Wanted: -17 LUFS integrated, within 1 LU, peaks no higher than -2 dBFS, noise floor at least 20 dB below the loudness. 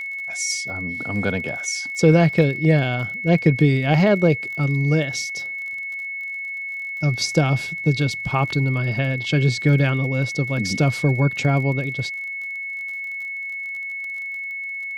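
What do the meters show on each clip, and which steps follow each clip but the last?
tick rate 35 per s; steady tone 2.2 kHz; tone level -27 dBFS; loudness -21.5 LUFS; peak level -3.0 dBFS; loudness target -17.0 LUFS
-> de-click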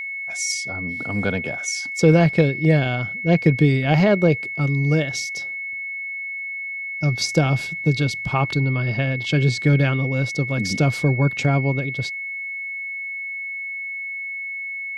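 tick rate 0 per s; steady tone 2.2 kHz; tone level -27 dBFS
-> band-stop 2.2 kHz, Q 30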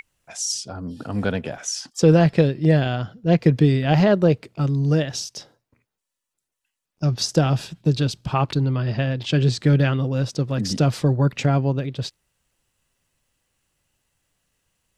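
steady tone not found; loudness -21.0 LUFS; peak level -3.5 dBFS; loudness target -17.0 LUFS
-> trim +4 dB; peak limiter -2 dBFS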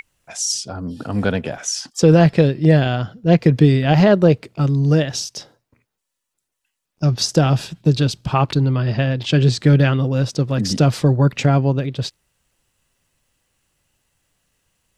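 loudness -17.0 LUFS; peak level -2.0 dBFS; noise floor -80 dBFS

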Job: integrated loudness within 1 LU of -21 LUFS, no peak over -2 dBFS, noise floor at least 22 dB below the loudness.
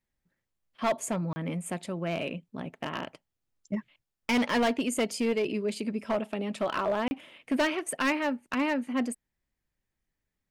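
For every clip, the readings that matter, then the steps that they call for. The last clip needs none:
clipped samples 1.8%; clipping level -21.5 dBFS; dropouts 2; longest dropout 30 ms; loudness -30.5 LUFS; peak level -21.5 dBFS; loudness target -21.0 LUFS
-> clip repair -21.5 dBFS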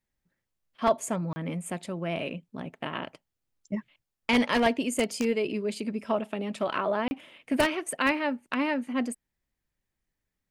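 clipped samples 0.0%; dropouts 2; longest dropout 30 ms
-> interpolate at 1.33/7.08 s, 30 ms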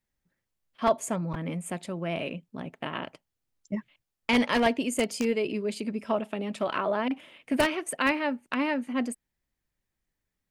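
dropouts 0; loudness -29.5 LUFS; peak level -12.5 dBFS; loudness target -21.0 LUFS
-> trim +8.5 dB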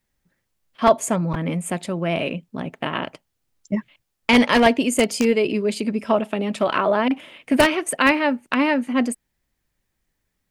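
loudness -21.0 LUFS; peak level -4.0 dBFS; noise floor -76 dBFS

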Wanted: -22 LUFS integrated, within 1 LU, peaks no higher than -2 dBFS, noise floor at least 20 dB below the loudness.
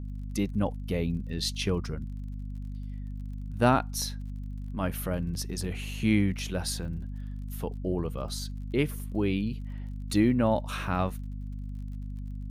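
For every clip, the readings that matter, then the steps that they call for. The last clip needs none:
tick rate 40 per s; hum 50 Hz; highest harmonic 250 Hz; hum level -34 dBFS; loudness -31.0 LUFS; peak level -11.5 dBFS; loudness target -22.0 LUFS
-> de-click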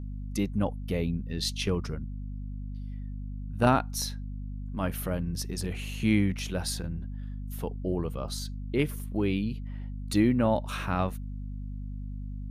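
tick rate 0.16 per s; hum 50 Hz; highest harmonic 250 Hz; hum level -34 dBFS
-> de-hum 50 Hz, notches 5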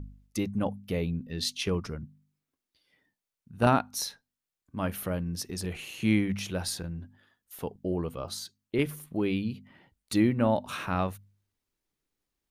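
hum not found; loudness -30.5 LUFS; peak level -11.0 dBFS; loudness target -22.0 LUFS
-> trim +8.5 dB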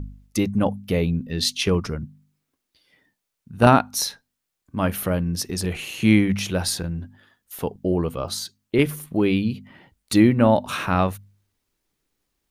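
loudness -22.0 LUFS; peak level -2.5 dBFS; noise floor -81 dBFS

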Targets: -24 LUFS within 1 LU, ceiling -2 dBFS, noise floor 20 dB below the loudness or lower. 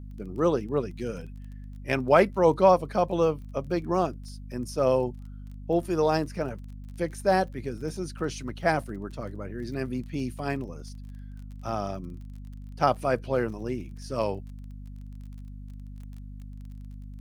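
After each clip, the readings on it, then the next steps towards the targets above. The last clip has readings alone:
tick rate 27 per s; hum 50 Hz; highest harmonic 250 Hz; hum level -38 dBFS; loudness -27.5 LUFS; peak level -6.5 dBFS; loudness target -24.0 LUFS
-> de-click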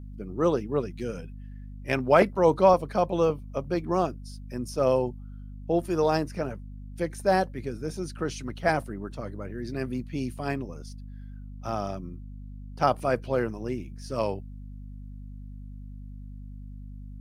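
tick rate 0 per s; hum 50 Hz; highest harmonic 250 Hz; hum level -38 dBFS
-> de-hum 50 Hz, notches 5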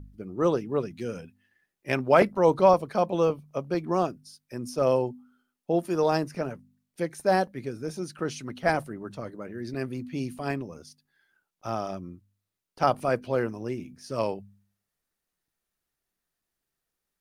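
hum not found; loudness -27.5 LUFS; peak level -6.5 dBFS; loudness target -24.0 LUFS
-> trim +3.5 dB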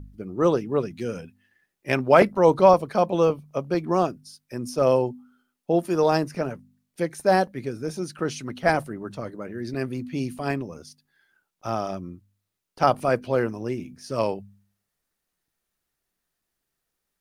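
loudness -24.0 LUFS; peak level -3.0 dBFS; noise floor -81 dBFS

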